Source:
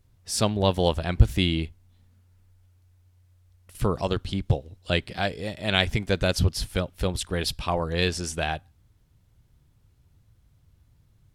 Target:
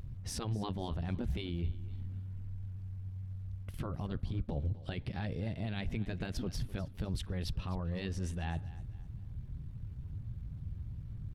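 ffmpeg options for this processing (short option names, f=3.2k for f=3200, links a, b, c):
-filter_complex "[0:a]afftfilt=real='re*lt(hypot(re,im),0.398)':imag='im*lt(hypot(re,im),0.398)':win_size=1024:overlap=0.75,bass=f=250:g=13,treble=f=4k:g=-11,areverse,acompressor=threshold=-31dB:ratio=8,areverse,alimiter=level_in=8dB:limit=-24dB:level=0:latency=1:release=102,volume=-8dB,tremolo=f=82:d=0.333,asetrate=46722,aresample=44100,atempo=0.943874,asplit=2[a][b];[b]aecho=0:1:255|510|765:0.126|0.0453|0.0163[c];[a][c]amix=inputs=2:normalize=0,volume=6.5dB"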